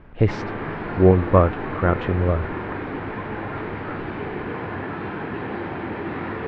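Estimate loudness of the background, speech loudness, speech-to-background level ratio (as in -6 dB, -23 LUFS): -30.0 LUFS, -20.0 LUFS, 10.0 dB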